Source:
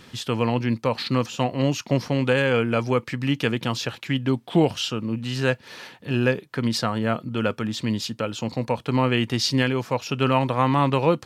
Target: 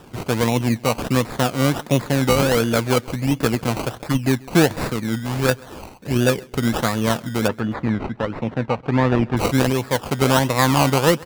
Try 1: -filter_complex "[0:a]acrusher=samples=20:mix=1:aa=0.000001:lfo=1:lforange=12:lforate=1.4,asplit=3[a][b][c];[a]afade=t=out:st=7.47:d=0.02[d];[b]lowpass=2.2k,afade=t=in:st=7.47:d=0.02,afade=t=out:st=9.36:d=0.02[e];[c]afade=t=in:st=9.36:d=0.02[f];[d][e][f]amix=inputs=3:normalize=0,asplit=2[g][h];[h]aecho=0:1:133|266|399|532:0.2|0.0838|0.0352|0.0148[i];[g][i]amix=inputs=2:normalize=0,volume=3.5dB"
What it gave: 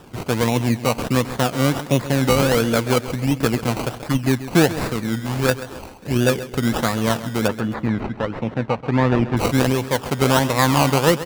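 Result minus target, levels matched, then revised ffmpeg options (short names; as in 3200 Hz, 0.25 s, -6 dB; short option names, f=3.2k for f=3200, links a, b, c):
echo-to-direct +10.5 dB
-filter_complex "[0:a]acrusher=samples=20:mix=1:aa=0.000001:lfo=1:lforange=12:lforate=1.4,asplit=3[a][b][c];[a]afade=t=out:st=7.47:d=0.02[d];[b]lowpass=2.2k,afade=t=in:st=7.47:d=0.02,afade=t=out:st=9.36:d=0.02[e];[c]afade=t=in:st=9.36:d=0.02[f];[d][e][f]amix=inputs=3:normalize=0,asplit=2[g][h];[h]aecho=0:1:133|266|399:0.0596|0.025|0.0105[i];[g][i]amix=inputs=2:normalize=0,volume=3.5dB"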